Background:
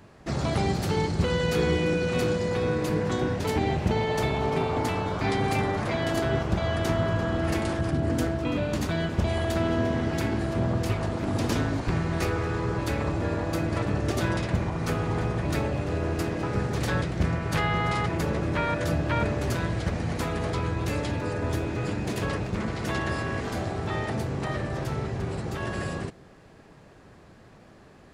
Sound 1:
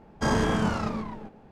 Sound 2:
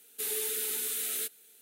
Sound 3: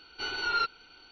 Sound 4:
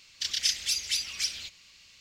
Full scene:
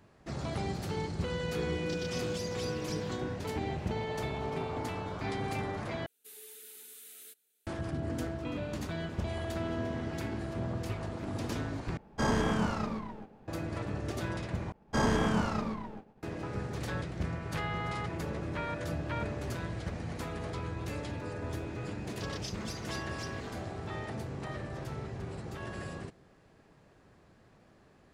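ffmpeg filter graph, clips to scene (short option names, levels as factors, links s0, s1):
-filter_complex "[4:a]asplit=2[s0][s1];[1:a]asplit=2[s2][s3];[0:a]volume=0.335[s4];[s0]alimiter=limit=0.075:level=0:latency=1:release=71[s5];[s3]agate=range=0.0224:threshold=0.00447:ratio=3:release=100:detection=peak[s6];[s4]asplit=4[s7][s8][s9][s10];[s7]atrim=end=6.064[s11];[2:a]atrim=end=1.61,asetpts=PTS-STARTPTS,volume=0.133[s12];[s8]atrim=start=7.666:end=11.974[s13];[s2]atrim=end=1.51,asetpts=PTS-STARTPTS,volume=0.596[s14];[s9]atrim=start=13.476:end=14.724[s15];[s6]atrim=end=1.51,asetpts=PTS-STARTPTS,volume=0.668[s16];[s10]atrim=start=16.226[s17];[s5]atrim=end=2,asetpts=PTS-STARTPTS,volume=0.266,afade=t=in:d=0.004:c=hsin,afade=t=out:st=1.996:d=0.004:c=hsin,adelay=1680[s18];[s1]atrim=end=2,asetpts=PTS-STARTPTS,volume=0.141,afade=t=in:d=0.004:c=hsin,afade=t=out:st=1.996:d=0.004:c=hsin,adelay=21990[s19];[s11][s12]acrossfade=d=0.004:c1=hsin:c2=hsin[s20];[s20][s13]acrossfade=d=0.004:c1=hsin:c2=hsin[s21];[s21][s14]acrossfade=d=0.004:c1=hsin:c2=hsin[s22];[s22][s15]acrossfade=d=0.004:c1=hsin:c2=hsin[s23];[s23][s16]acrossfade=d=0.004:c1=hsin:c2=hsin[s24];[s24][s17]acrossfade=d=0.004:c1=hsin:c2=hsin[s25];[s25][s18][s19]amix=inputs=3:normalize=0"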